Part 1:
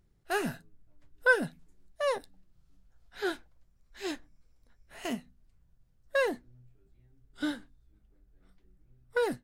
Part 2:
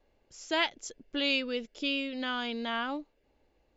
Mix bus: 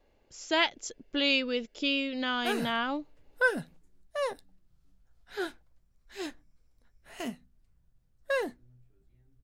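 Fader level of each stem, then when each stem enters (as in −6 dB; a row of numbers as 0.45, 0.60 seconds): −2.0, +2.5 decibels; 2.15, 0.00 seconds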